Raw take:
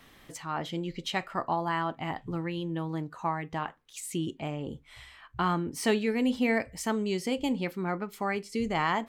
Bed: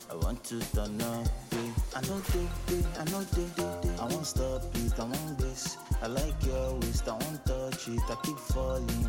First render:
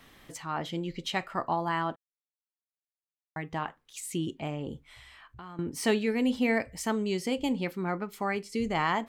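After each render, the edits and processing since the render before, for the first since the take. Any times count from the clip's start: 1.96–3.36 mute; 4.88–5.59 compressor 3:1, threshold -48 dBFS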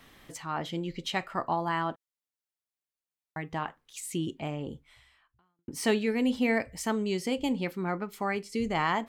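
4.63–5.68 fade out quadratic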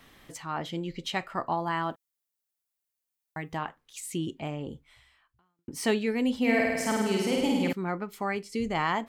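1.83–3.57 high shelf 7600 Hz +10.5 dB; 6.39–7.73 flutter echo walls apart 8.8 m, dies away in 1.4 s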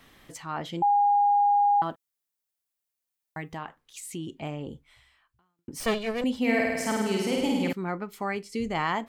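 0.82–1.82 bleep 816 Hz -18 dBFS; 3.48–4.37 compressor 1.5:1, threshold -38 dBFS; 5.8–6.24 minimum comb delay 1.7 ms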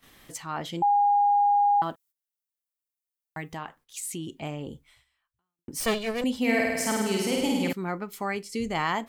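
gate -57 dBFS, range -13 dB; high shelf 5100 Hz +8 dB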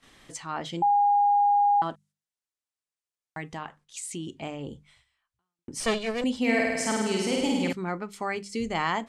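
LPF 9200 Hz 24 dB/oct; notches 50/100/150/200 Hz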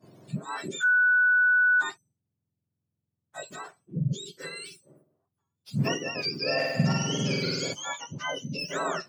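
spectrum mirrored in octaves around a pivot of 1100 Hz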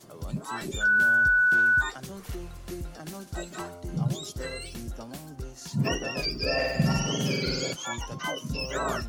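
add bed -6.5 dB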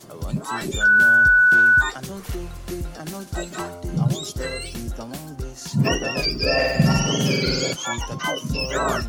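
gain +7 dB

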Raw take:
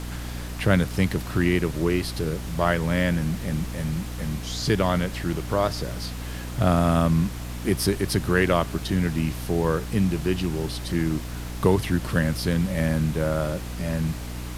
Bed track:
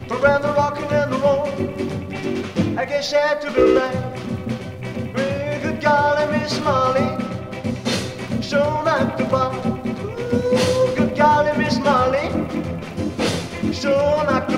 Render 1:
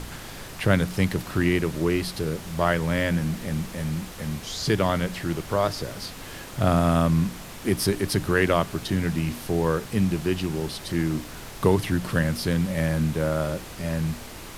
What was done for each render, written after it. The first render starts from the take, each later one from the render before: de-hum 60 Hz, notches 5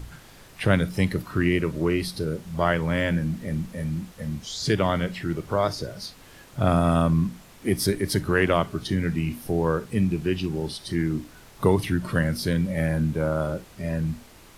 noise print and reduce 10 dB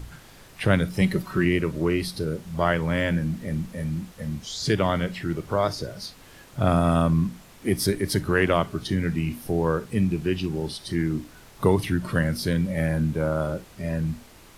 1.01–1.45 comb 5.3 ms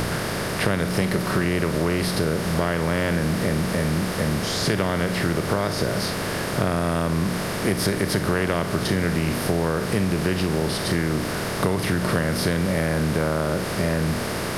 per-bin compression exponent 0.4; compressor, threshold -18 dBFS, peak gain reduction 8.5 dB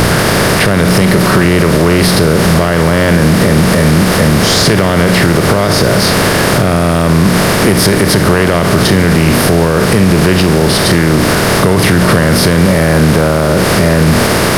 sample leveller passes 2; maximiser +10 dB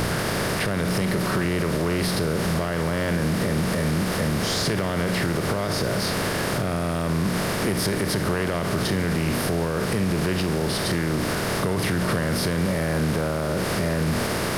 gain -15 dB

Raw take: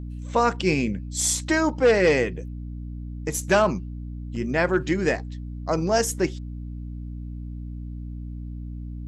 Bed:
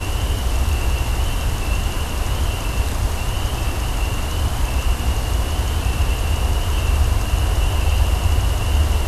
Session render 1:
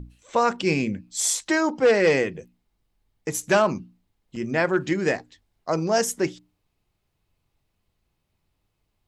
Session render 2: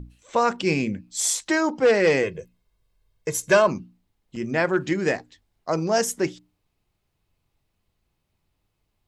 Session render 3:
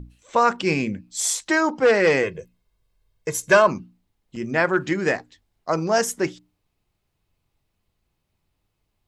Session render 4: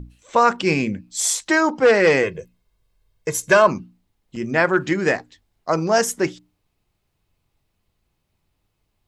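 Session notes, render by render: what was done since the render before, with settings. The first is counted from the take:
notches 60/120/180/240/300 Hz
2.23–3.68 comb 1.9 ms, depth 64%
dynamic EQ 1300 Hz, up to +5 dB, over -36 dBFS, Q 1
gain +2.5 dB; limiter -3 dBFS, peak gain reduction 3 dB

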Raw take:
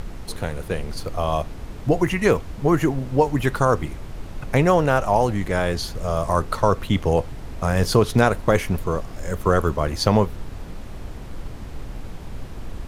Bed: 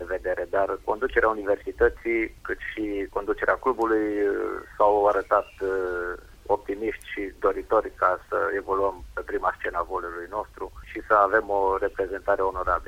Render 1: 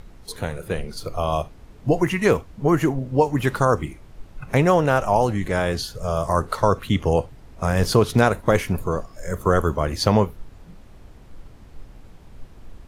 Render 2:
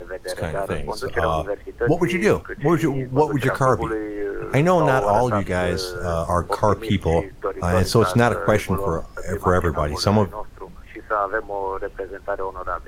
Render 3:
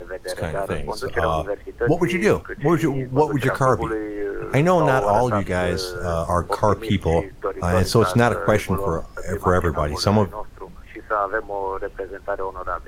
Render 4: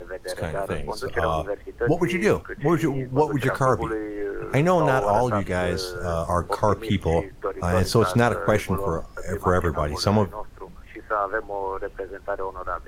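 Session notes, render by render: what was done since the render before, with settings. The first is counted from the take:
noise print and reduce 11 dB
add bed -3 dB
nothing audible
gain -2.5 dB

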